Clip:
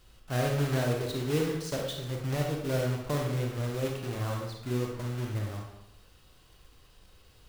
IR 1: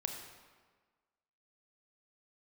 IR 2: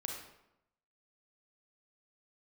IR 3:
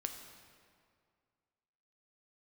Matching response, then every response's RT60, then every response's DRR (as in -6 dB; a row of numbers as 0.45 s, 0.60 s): 2; 1.5 s, 0.85 s, 2.1 s; 3.0 dB, 0.5 dB, 4.5 dB